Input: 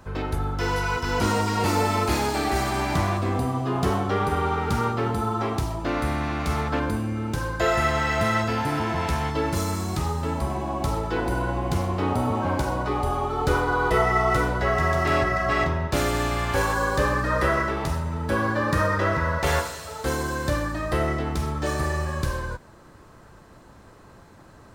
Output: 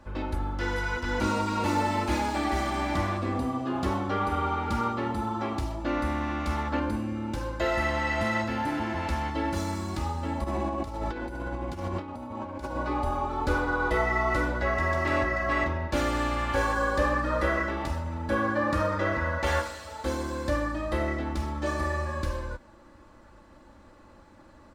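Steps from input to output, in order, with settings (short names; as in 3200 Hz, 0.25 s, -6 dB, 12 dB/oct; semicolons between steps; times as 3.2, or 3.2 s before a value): high shelf 7400 Hz -10.5 dB; comb 3.5 ms, depth 66%; 10.44–12.76 negative-ratio compressor -27 dBFS, ratio -0.5; gain -5 dB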